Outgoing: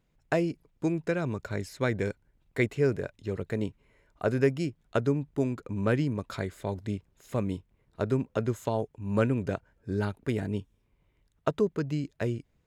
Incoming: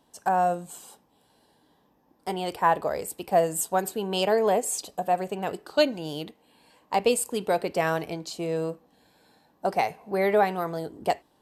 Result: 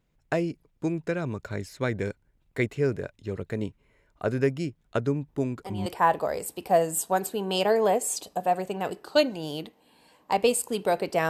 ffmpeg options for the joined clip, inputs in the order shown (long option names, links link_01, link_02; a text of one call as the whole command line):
ffmpeg -i cue0.wav -i cue1.wav -filter_complex "[1:a]asplit=2[link_01][link_02];[0:a]apad=whole_dur=11.29,atrim=end=11.29,atrim=end=5.862[link_03];[link_02]atrim=start=2.478:end=7.91[link_04];[link_01]atrim=start=1.9:end=2.48,asetpts=PTS-STARTPTS,volume=-9.5dB,afade=type=in:duration=0.004:curve=hsin,afade=type=out:start_time=0.576:duration=0.004:curve=hsin,adelay=5280[link_05];[link_03][link_04]acrossfade=duration=0.004:curve1=hsin:curve2=hsin[link_06];[link_06][link_05]amix=inputs=2:normalize=0" out.wav